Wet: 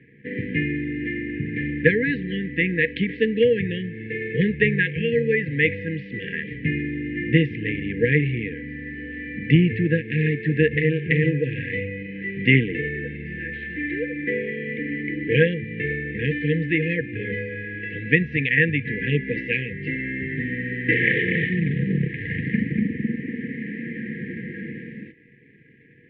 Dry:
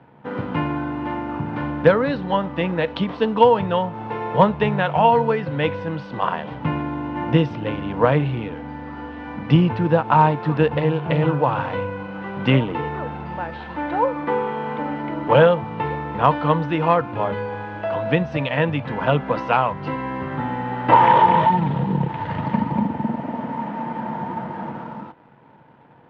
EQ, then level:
linear-phase brick-wall band-stop 500–1,600 Hz
low-pass with resonance 2,100 Hz, resonance Q 4.1
−1.0 dB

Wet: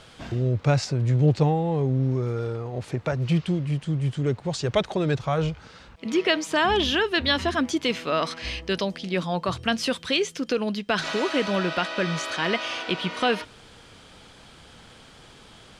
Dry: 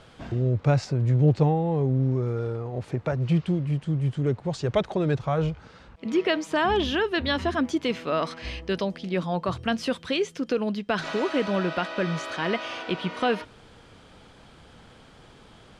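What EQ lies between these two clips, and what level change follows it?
high-shelf EQ 2,100 Hz +8.5 dB
0.0 dB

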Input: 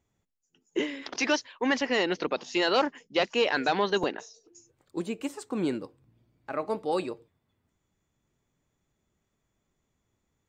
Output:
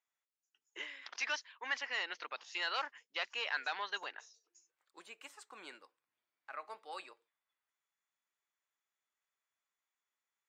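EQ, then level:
Chebyshev high-pass filter 1,400 Hz, order 2
high-shelf EQ 3,600 Hz −6.5 dB
−5.5 dB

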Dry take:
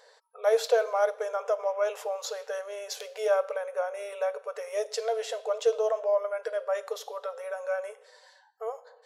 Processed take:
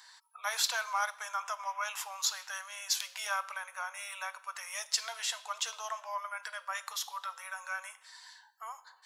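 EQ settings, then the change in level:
elliptic high-pass filter 940 Hz, stop band 70 dB
high-shelf EQ 3,600 Hz +8 dB
+2.0 dB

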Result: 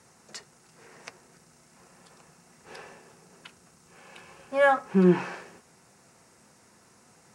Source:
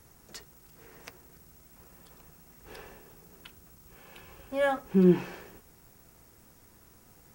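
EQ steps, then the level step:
notch filter 3,300 Hz, Q 29
dynamic equaliser 1,200 Hz, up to +6 dB, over −46 dBFS, Q 0.89
loudspeaker in its box 180–9,600 Hz, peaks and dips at 300 Hz −7 dB, 430 Hz −3 dB, 3,300 Hz −3 dB
+4.0 dB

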